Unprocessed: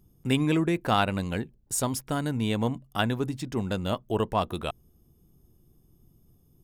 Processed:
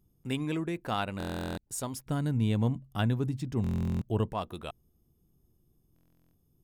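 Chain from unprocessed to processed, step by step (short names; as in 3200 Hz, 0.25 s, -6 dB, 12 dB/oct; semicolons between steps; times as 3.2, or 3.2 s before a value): 2.06–4.33 bell 92 Hz +12 dB 2.8 oct; stuck buffer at 1.18/3.62/5.94, samples 1024, times 16; gain -8 dB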